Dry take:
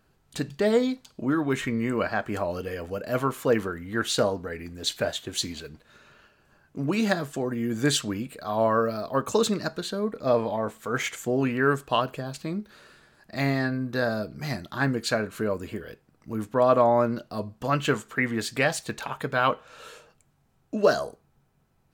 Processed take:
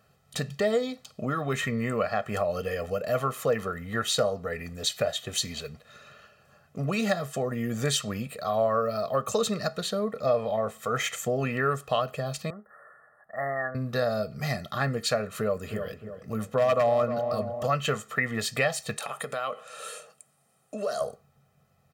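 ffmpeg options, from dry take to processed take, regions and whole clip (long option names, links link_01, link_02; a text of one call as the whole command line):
ffmpeg -i in.wav -filter_complex "[0:a]asettb=1/sr,asplit=3[link_01][link_02][link_03];[link_01]atrim=end=12.504[link_04];[link_02]atrim=start=12.5:end=13.75,asetpts=PTS-STARTPTS,afade=type=in:duration=0.004:curve=qsin,afade=type=out:start_time=1.246:duration=0.004:curve=qsin,asuperstop=centerf=4000:order=20:qfactor=0.65,acrossover=split=540 2500:gain=0.141 1 0.141[link_05][link_06][link_07];[link_05][link_06][link_07]amix=inputs=3:normalize=0[link_08];[link_03]atrim=start=13.746[link_09];[link_04][link_08]acrossfade=duration=0.004:curve1=hsin:curve2=qsin[link_10];[link_10][link_09]acrossfade=duration=0.004:curve1=qsin:curve2=hsin,asettb=1/sr,asplit=3[link_11][link_12][link_13];[link_11]atrim=end=15.254[link_14];[link_12]atrim=start=15.25:end=17.67,asetpts=PTS-STARTPTS,afade=type=in:duration=0.004:curve=qsin,afade=type=out:start_time=2.416:duration=0.004:curve=qsin,aeval=exprs='0.211*(abs(mod(val(0)/0.211+3,4)-2)-1)':channel_layout=same,asplit=2[link_15][link_16];[link_16]adelay=308,lowpass=frequency=1100:poles=1,volume=-10dB,asplit=2[link_17][link_18];[link_18]adelay=308,lowpass=frequency=1100:poles=1,volume=0.46,asplit=2[link_19][link_20];[link_20]adelay=308,lowpass=frequency=1100:poles=1,volume=0.46,asplit=2[link_21][link_22];[link_22]adelay=308,lowpass=frequency=1100:poles=1,volume=0.46,asplit=2[link_23][link_24];[link_24]adelay=308,lowpass=frequency=1100:poles=1,volume=0.46[link_25];[link_15][link_17][link_19][link_21][link_23][link_25]amix=inputs=6:normalize=0,atrim=end_sample=106722[link_26];[link_13]atrim=start=17.666[link_27];[link_14][link_26]acrossfade=duration=0.004:curve1=hsin:curve2=qsin[link_28];[link_28][link_27]acrossfade=duration=0.004:curve1=qsin:curve2=hsin,asettb=1/sr,asplit=3[link_29][link_30][link_31];[link_29]atrim=end=18.964[link_32];[link_30]atrim=start=18.96:end=21.01,asetpts=PTS-STARTPTS,afade=type=in:duration=0.004:curve=qsin,afade=type=out:start_time=2.046:duration=0.004:curve=qsin,highpass=220,equalizer=frequency=9300:width_type=o:width=0.51:gain=14.5,acompressor=threshold=-33dB:ratio=3:attack=3.2:release=140:knee=1:detection=peak[link_33];[link_31]atrim=start=21.006[link_34];[link_32][link_33]acrossfade=duration=0.004:curve1=hsin:curve2=qsin[link_35];[link_35][link_34]acrossfade=duration=0.004:curve1=qsin:curve2=hsin,highpass=100,aecho=1:1:1.6:0.81,acompressor=threshold=-28dB:ratio=2,volume=1.5dB" out.wav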